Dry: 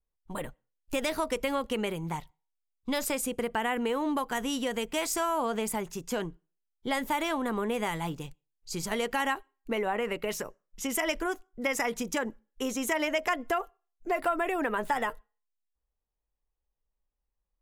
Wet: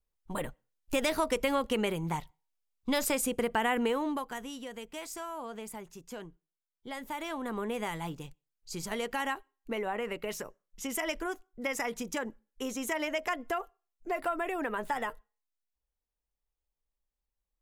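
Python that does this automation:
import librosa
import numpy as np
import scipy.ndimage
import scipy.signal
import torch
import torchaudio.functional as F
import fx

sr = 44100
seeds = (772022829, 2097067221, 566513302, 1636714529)

y = fx.gain(x, sr, db=fx.line((3.85, 1.0), (4.54, -11.0), (6.89, -11.0), (7.6, -4.0)))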